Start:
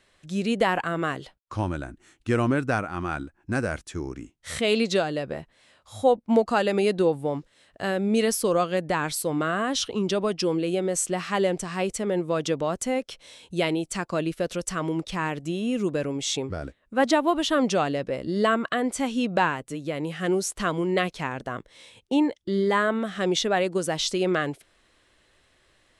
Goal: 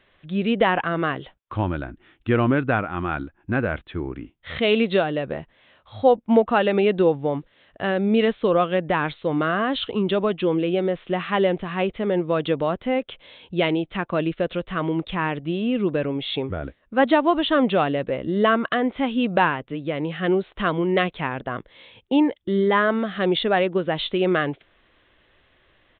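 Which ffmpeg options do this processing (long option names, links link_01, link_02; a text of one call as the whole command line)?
ffmpeg -i in.wav -af "aresample=8000,aresample=44100,volume=3.5dB" out.wav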